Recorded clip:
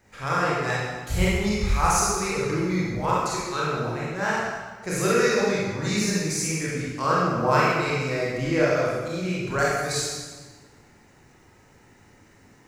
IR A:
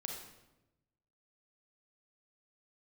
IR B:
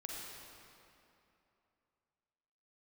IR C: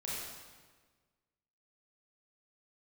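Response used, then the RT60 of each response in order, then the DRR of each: C; 1.0 s, 2.9 s, 1.4 s; 0.5 dB, -3.0 dB, -7.0 dB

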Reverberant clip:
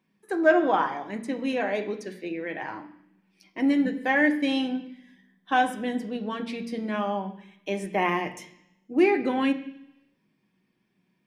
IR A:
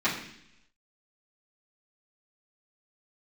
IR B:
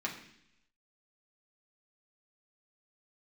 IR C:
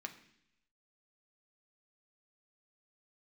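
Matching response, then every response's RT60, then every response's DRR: C; 0.70 s, 0.70 s, no single decay rate; -12.0 dB, -2.5 dB, 4.5 dB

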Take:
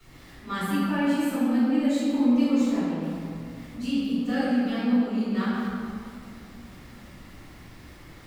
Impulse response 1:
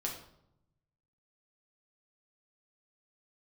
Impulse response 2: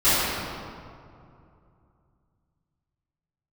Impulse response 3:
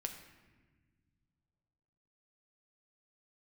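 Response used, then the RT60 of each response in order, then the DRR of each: 2; 0.75 s, 2.5 s, no single decay rate; -2.0 dB, -17.5 dB, 4.0 dB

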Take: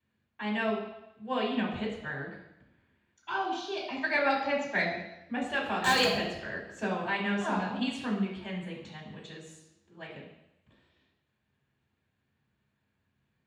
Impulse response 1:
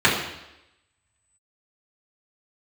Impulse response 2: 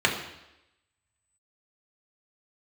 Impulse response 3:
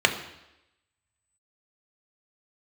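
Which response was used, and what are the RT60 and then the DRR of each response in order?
1; 0.90 s, 0.90 s, 0.90 s; -8.0 dB, -1.5 dB, 4.0 dB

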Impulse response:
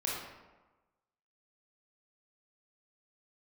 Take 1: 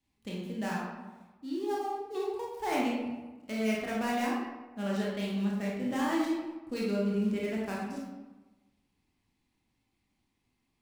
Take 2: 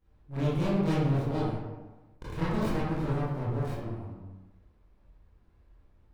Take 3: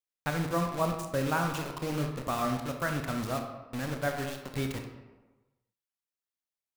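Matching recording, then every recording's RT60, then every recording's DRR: 1; 1.2 s, 1.2 s, 1.2 s; -5.0 dB, -11.5 dB, 3.5 dB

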